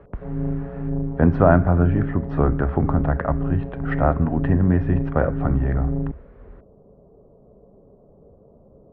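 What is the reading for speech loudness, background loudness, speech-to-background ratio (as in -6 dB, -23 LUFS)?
-21.5 LUFS, -28.0 LUFS, 6.5 dB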